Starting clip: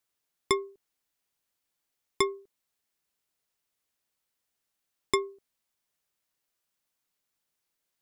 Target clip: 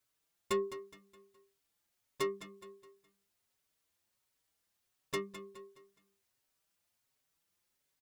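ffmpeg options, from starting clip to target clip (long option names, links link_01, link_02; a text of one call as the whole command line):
ffmpeg -i in.wav -filter_complex "[0:a]equalizer=frequency=93:width_type=o:width=1.3:gain=5,asplit=2[link_01][link_02];[link_02]alimiter=limit=-18.5dB:level=0:latency=1:release=20,volume=-1.5dB[link_03];[link_01][link_03]amix=inputs=2:normalize=0,asoftclip=type=tanh:threshold=-24.5dB,asplit=2[link_04][link_05];[link_05]asetrate=22050,aresample=44100,atempo=2,volume=-12dB[link_06];[link_04][link_06]amix=inputs=2:normalize=0,aecho=1:1:209|418|627|836:0.251|0.1|0.0402|0.0161,asplit=2[link_07][link_08];[link_08]adelay=4.9,afreqshift=1.4[link_09];[link_07][link_09]amix=inputs=2:normalize=1,volume=-2dB" out.wav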